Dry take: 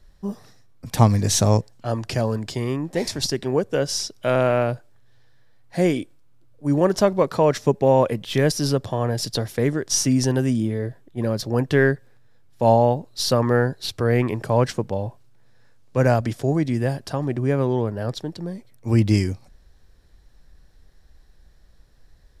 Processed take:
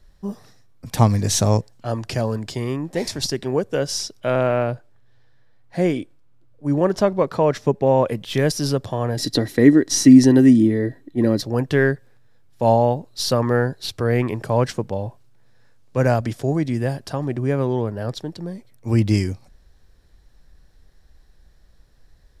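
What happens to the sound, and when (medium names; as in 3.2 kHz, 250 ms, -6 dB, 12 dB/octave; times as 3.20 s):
4.20–8.07 s: treble shelf 4.7 kHz -8 dB
9.17–11.42 s: small resonant body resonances 290/1900/4000 Hz, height 15 dB, ringing for 35 ms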